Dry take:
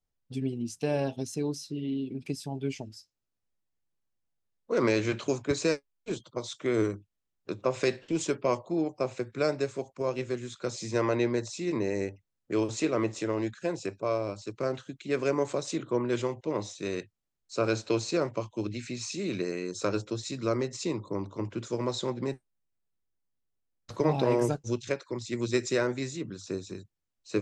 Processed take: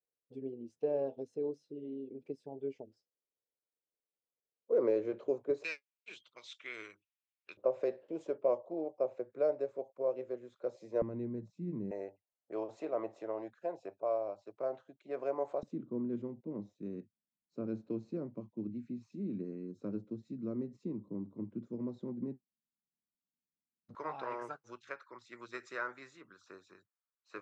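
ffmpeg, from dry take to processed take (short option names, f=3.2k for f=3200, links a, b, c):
-af "asetnsamples=n=441:p=0,asendcmd='5.64 bandpass f 2500;7.57 bandpass f 560;11.02 bandpass f 180;11.91 bandpass f 680;15.63 bandpass f 220;23.95 bandpass f 1300',bandpass=f=480:t=q:w=3.2:csg=0"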